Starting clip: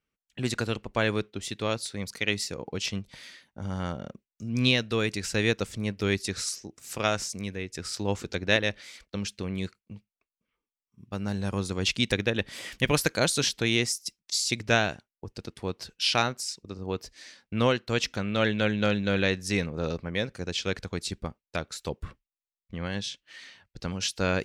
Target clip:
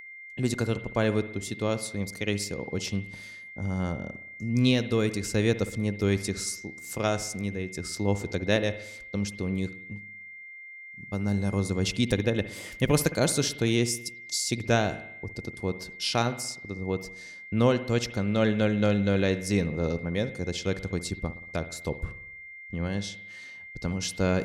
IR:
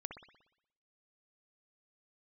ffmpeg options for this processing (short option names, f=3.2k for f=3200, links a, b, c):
-filter_complex "[0:a]aeval=exprs='val(0)+0.0158*sin(2*PI*2100*n/s)':c=same,equalizer=f=2.4k:t=o:w=2.6:g=-10,asplit=2[a][b];[1:a]atrim=start_sample=2205[c];[b][c]afir=irnorm=-1:irlink=0,volume=-2dB[d];[a][d]amix=inputs=2:normalize=0"